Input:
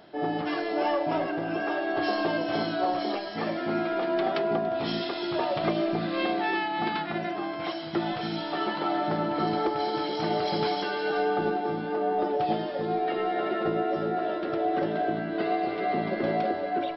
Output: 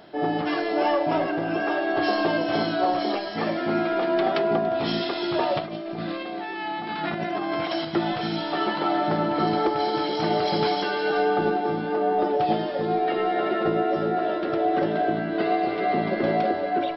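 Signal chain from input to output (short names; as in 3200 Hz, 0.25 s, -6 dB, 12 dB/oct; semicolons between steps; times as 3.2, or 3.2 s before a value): 5.59–7.85 negative-ratio compressor -34 dBFS, ratio -1; gain +4 dB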